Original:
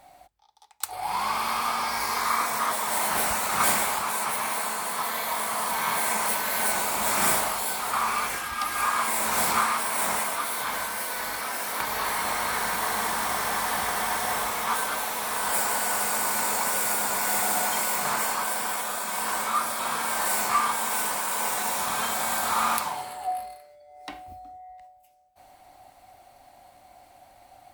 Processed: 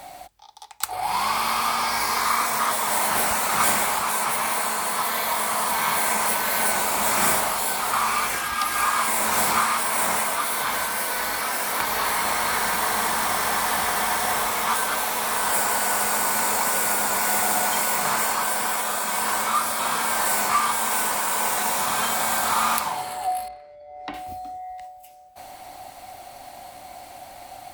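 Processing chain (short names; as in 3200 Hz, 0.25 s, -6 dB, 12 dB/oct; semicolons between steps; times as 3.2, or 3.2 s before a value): 23.48–24.14 tape spacing loss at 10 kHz 30 dB; three-band squash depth 40%; gain +3.5 dB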